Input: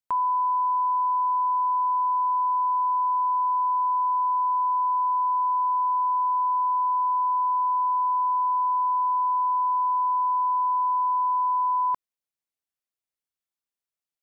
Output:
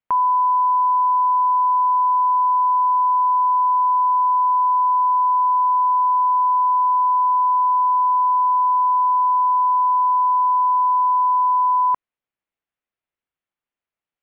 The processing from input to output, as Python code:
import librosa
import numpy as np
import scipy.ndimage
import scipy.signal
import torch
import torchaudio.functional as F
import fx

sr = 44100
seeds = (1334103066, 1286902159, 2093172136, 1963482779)

y = scipy.signal.sosfilt(scipy.signal.butter(4, 2900.0, 'lowpass', fs=sr, output='sos'), x)
y = y * librosa.db_to_amplitude(6.5)